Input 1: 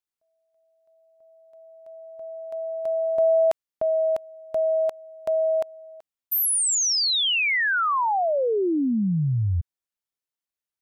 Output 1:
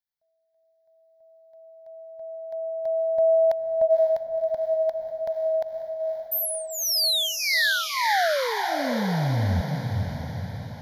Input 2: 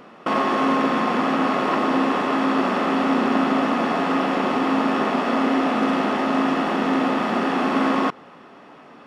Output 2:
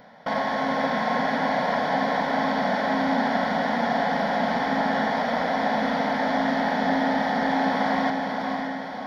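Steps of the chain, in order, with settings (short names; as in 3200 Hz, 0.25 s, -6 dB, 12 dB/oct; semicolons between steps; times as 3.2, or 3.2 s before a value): fixed phaser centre 1800 Hz, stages 8; diffused feedback echo 0.531 s, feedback 55%, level -4 dB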